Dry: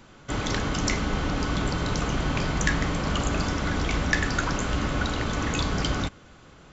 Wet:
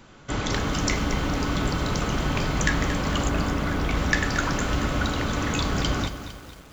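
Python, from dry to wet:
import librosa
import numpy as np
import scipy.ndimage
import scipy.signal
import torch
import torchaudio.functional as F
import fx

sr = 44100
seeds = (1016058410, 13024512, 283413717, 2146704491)

y = fx.high_shelf(x, sr, hz=4700.0, db=-10.0, at=(3.29, 3.97))
y = fx.echo_crushed(y, sr, ms=228, feedback_pct=55, bits=7, wet_db=-10.5)
y = y * librosa.db_to_amplitude(1.0)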